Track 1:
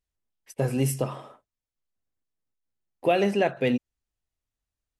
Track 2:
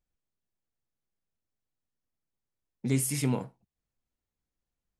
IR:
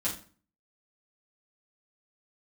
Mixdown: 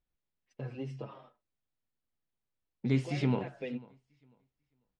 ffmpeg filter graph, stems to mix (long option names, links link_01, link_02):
-filter_complex "[0:a]acompressor=threshold=-24dB:ratio=4,agate=range=-12dB:threshold=-45dB:ratio=16:detection=peak,asplit=2[link_01][link_02];[link_02]adelay=6.7,afreqshift=-2.8[link_03];[link_01][link_03]amix=inputs=2:normalize=1,volume=-8.5dB[link_04];[1:a]volume=-1dB,asplit=3[link_05][link_06][link_07];[link_06]volume=-22.5dB[link_08];[link_07]apad=whole_len=220676[link_09];[link_04][link_09]sidechaincompress=threshold=-31dB:ratio=8:attack=16:release=256[link_10];[link_08]aecho=0:1:495|990|1485:1|0.21|0.0441[link_11];[link_10][link_05][link_11]amix=inputs=3:normalize=0,lowpass=frequency=4300:width=0.5412,lowpass=frequency=4300:width=1.3066"